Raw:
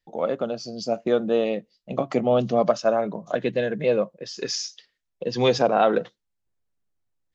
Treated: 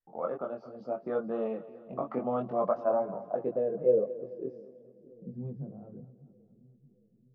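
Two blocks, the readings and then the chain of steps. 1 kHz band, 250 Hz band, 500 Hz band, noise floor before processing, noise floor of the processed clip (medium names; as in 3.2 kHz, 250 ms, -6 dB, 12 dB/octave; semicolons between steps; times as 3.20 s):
-10.5 dB, -10.5 dB, -8.0 dB, -78 dBFS, -65 dBFS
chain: low-pass sweep 1.2 kHz -> 130 Hz, 2.61–5.88 s; chorus voices 2, 0.34 Hz, delay 22 ms, depth 1.9 ms; two-band feedback delay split 340 Hz, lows 616 ms, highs 217 ms, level -15.5 dB; trim -8 dB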